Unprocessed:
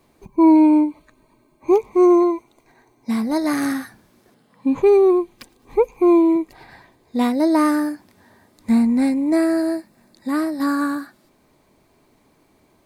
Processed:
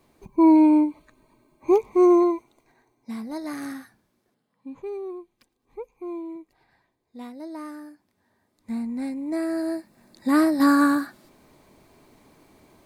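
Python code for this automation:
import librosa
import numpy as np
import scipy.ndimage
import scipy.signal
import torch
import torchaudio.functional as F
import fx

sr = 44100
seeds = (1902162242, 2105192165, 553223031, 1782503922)

y = fx.gain(x, sr, db=fx.line((2.31, -3.0), (3.1, -12.0), (3.78, -12.0), (4.75, -20.0), (7.8, -20.0), (9.4, -9.5), (10.4, 3.0)))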